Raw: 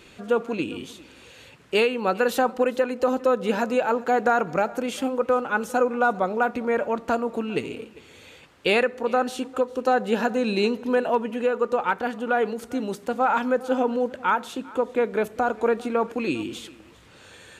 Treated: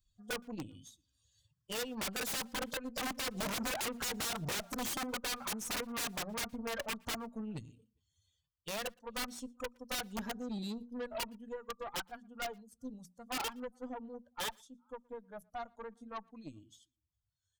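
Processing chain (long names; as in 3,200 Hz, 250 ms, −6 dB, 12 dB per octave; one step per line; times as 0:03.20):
spectral dynamics exaggerated over time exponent 2
source passing by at 0:03.86, 7 m/s, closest 7.5 metres
mains-hum notches 60/120/180/240 Hz
downward compressor 12 to 1, threshold −31 dBFS, peak gain reduction 12 dB
phaser with its sweep stopped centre 950 Hz, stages 4
wrap-around overflow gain 40.5 dB
harmonic generator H 5 −22 dB, 6 −17 dB, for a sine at −40.5 dBFS
slap from a distant wall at 20 metres, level −29 dB
level +9 dB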